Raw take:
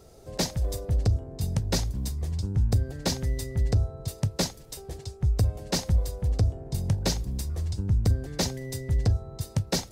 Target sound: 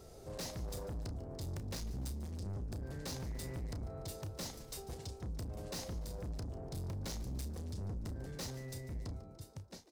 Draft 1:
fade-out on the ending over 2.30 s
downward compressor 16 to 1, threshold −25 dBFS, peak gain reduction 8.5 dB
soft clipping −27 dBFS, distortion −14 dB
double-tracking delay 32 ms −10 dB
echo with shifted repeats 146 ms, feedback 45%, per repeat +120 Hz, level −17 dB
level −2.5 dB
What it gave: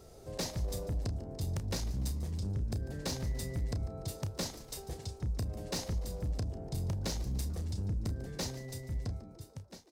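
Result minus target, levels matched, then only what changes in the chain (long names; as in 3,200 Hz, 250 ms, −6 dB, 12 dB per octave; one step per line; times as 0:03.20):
soft clipping: distortion −8 dB
change: soft clipping −37 dBFS, distortion −6 dB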